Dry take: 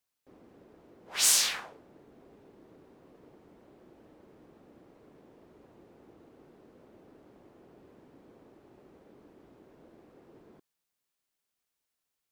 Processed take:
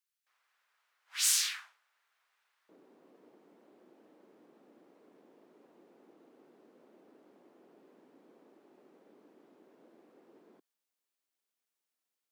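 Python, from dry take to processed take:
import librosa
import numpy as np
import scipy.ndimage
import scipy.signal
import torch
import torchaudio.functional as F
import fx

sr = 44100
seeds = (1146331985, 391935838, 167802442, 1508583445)

y = fx.highpass(x, sr, hz=fx.steps((0.0, 1300.0), (2.69, 210.0)), slope=24)
y = y * librosa.db_to_amplitude(-4.5)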